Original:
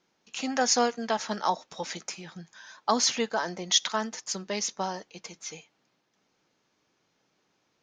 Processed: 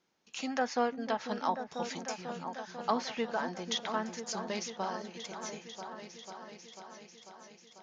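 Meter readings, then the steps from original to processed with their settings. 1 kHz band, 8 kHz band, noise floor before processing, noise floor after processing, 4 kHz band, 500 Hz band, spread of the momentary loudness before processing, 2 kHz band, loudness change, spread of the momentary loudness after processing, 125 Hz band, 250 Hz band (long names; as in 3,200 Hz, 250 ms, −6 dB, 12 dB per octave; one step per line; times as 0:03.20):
−4.0 dB, −14.0 dB, −74 dBFS, −60 dBFS, −10.5 dB, −4.0 dB, 17 LU, −5.0 dB, −8.0 dB, 17 LU, −4.0 dB, −3.5 dB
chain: treble cut that deepens with the level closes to 2,500 Hz, closed at −23 dBFS
echo whose low-pass opens from repeat to repeat 494 ms, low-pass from 400 Hz, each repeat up 2 octaves, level −6 dB
level −5 dB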